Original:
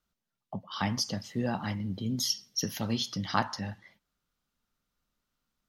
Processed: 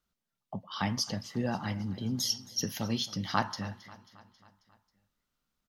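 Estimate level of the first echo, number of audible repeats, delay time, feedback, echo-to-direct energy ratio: -19.0 dB, 4, 0.27 s, 58%, -17.0 dB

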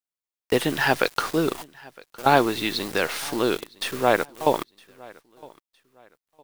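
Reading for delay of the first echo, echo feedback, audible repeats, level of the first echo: 0.961 s, 31%, 2, -24.0 dB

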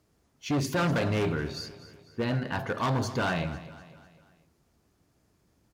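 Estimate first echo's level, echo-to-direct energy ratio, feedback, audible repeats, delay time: -16.0 dB, -15.0 dB, 47%, 3, 0.249 s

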